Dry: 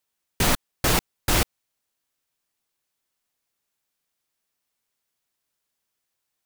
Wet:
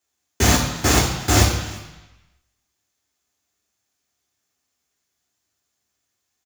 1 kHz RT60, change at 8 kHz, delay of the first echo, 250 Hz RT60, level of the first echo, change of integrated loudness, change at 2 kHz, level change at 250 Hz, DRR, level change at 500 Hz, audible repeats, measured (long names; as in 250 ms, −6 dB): 1.2 s, +7.0 dB, 343 ms, 1.1 s, −21.0 dB, +5.5 dB, +4.5 dB, +7.5 dB, −3.0 dB, +5.5 dB, 1